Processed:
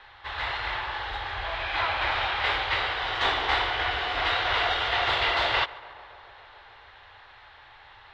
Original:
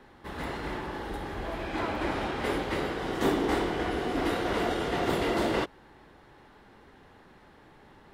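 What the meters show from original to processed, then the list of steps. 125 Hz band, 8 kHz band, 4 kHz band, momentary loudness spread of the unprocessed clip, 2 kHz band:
-3.0 dB, n/a, +12.0 dB, 9 LU, +9.5 dB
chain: EQ curve 110 Hz 0 dB, 170 Hz -23 dB, 290 Hz -18 dB, 780 Hz +5 dB, 3800 Hz +13 dB, 12000 Hz -25 dB; on a send: tape echo 0.141 s, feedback 87%, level -18.5 dB, low-pass 2300 Hz

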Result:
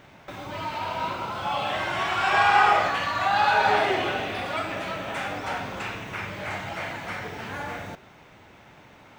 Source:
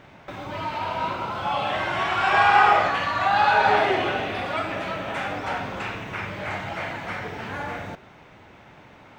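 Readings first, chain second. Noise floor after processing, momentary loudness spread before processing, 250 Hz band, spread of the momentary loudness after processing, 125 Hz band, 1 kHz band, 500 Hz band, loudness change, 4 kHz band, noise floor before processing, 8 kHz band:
-51 dBFS, 14 LU, -2.5 dB, 14 LU, -2.5 dB, -2.5 dB, -2.5 dB, -2.0 dB, 0.0 dB, -49 dBFS, n/a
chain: high shelf 5800 Hz +10 dB; gain -2.5 dB

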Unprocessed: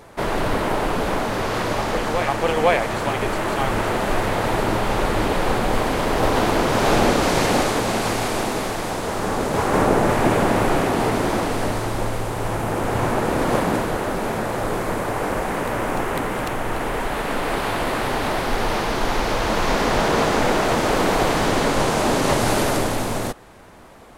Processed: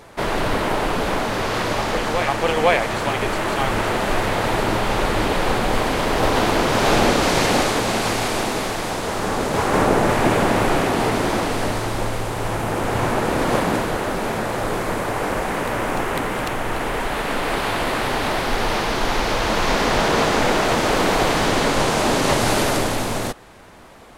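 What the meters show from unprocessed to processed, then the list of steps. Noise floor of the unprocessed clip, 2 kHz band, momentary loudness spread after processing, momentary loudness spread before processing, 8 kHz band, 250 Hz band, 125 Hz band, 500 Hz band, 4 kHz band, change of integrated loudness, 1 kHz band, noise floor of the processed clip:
-26 dBFS, +2.0 dB, 6 LU, 6 LU, +2.0 dB, 0.0 dB, 0.0 dB, +0.5 dB, +3.5 dB, +1.0 dB, +1.0 dB, -25 dBFS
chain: bell 3600 Hz +3.5 dB 2.4 oct

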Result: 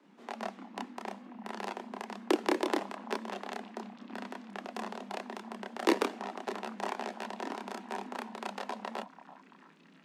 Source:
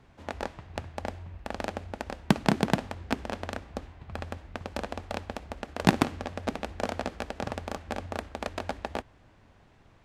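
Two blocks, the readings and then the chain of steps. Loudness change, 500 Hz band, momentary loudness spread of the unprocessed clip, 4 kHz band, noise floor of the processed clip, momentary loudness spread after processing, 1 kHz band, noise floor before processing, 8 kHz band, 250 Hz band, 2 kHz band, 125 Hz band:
-4.0 dB, -2.0 dB, 14 LU, -4.0 dB, -59 dBFS, 13 LU, -2.5 dB, -59 dBFS, -4.5 dB, -5.5 dB, -4.0 dB, under -20 dB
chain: chorus voices 4, 0.3 Hz, delay 29 ms, depth 1.3 ms; delay with a stepping band-pass 0.336 s, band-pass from 700 Hz, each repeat 0.7 oct, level -12 dB; frequency shift +160 Hz; gain -1.5 dB

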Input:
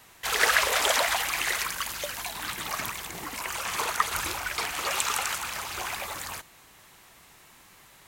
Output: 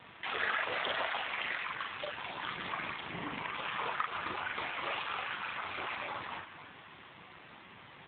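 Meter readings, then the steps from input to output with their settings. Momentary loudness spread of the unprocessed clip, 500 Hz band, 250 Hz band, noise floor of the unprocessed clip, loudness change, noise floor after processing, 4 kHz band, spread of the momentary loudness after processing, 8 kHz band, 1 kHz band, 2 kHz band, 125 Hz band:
12 LU, -7.5 dB, -3.0 dB, -55 dBFS, -9.0 dB, -54 dBFS, -10.5 dB, 19 LU, under -40 dB, -6.5 dB, -7.5 dB, -6.0 dB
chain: spring tank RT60 2.9 s, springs 30 ms, chirp 65 ms, DRR 18.5 dB; compressor 2:1, threshold -43 dBFS, peak gain reduction 14.5 dB; HPF 99 Hz 12 dB/oct; doubler 41 ms -3.5 dB; outdoor echo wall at 45 m, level -12 dB; wow and flutter 28 cents; low shelf 190 Hz +5 dB; bit-crush 10-bit; gain +4.5 dB; AMR-NB 7.4 kbps 8000 Hz

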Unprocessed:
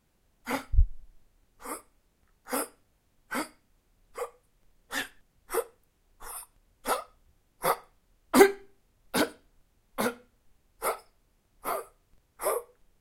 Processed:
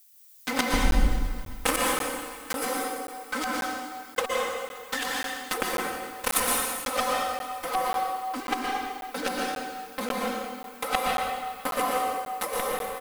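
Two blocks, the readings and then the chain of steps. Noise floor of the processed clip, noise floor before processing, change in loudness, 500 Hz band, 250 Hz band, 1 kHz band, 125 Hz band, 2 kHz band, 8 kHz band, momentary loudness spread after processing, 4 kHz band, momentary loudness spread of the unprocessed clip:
-45 dBFS, -71 dBFS, +2.0 dB, -0.5 dB, +0.5 dB, +7.0 dB, +1.5 dB, +6.0 dB, +7.5 dB, 9 LU, +9.0 dB, 15 LU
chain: fuzz box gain 34 dB, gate -35 dBFS; low shelf 77 Hz -10 dB; de-hum 377.7 Hz, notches 3; negative-ratio compressor -31 dBFS, ratio -1; high shelf 8600 Hz -6 dB; comb 3.9 ms, depth 96%; thinning echo 0.132 s, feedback 83%, level -21 dB; added noise violet -57 dBFS; plate-style reverb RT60 1.8 s, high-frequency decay 0.8×, pre-delay 0.105 s, DRR -3 dB; crackling interface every 0.54 s, samples 512, zero, from 0.91

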